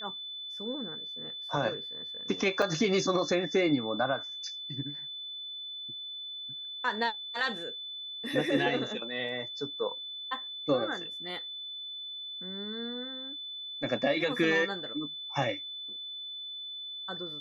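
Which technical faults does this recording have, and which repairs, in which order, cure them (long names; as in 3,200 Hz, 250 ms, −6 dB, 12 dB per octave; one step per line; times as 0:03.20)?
whistle 3,500 Hz −38 dBFS
0:02.62: drop-out 4.3 ms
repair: notch filter 3,500 Hz, Q 30
repair the gap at 0:02.62, 4.3 ms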